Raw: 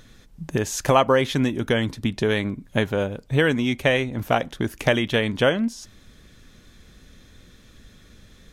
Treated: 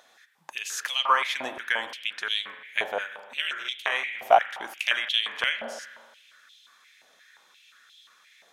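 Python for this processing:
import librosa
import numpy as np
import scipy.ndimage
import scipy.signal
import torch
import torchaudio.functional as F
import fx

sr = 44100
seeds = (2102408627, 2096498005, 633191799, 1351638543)

y = fx.ring_mod(x, sr, carrier_hz=110.0, at=(3.25, 3.92))
y = fx.rev_spring(y, sr, rt60_s=1.5, pass_ms=(39,), chirp_ms=50, drr_db=9.5)
y = fx.filter_held_highpass(y, sr, hz=5.7, low_hz=730.0, high_hz=3300.0)
y = F.gain(torch.from_numpy(y), -5.0).numpy()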